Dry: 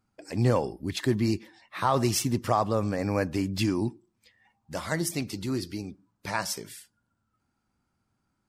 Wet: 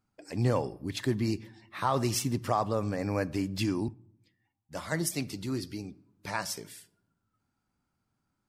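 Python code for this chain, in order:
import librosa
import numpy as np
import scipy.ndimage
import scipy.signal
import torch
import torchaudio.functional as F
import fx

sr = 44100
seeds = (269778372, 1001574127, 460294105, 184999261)

y = fx.room_shoebox(x, sr, seeds[0], volume_m3=3400.0, walls='furnished', distance_m=0.35)
y = fx.band_widen(y, sr, depth_pct=40, at=(3.88, 5.29))
y = F.gain(torch.from_numpy(y), -3.5).numpy()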